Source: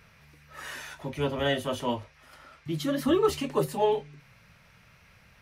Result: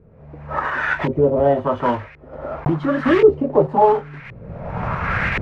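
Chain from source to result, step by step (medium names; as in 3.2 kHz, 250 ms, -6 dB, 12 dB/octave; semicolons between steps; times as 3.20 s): block-companded coder 3-bit; recorder AGC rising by 32 dB/s; LFO low-pass saw up 0.93 Hz 380–2200 Hz; trim +7.5 dB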